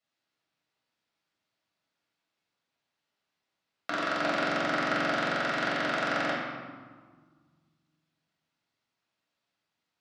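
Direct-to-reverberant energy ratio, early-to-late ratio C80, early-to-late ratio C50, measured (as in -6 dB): -6.5 dB, 2.0 dB, 0.0 dB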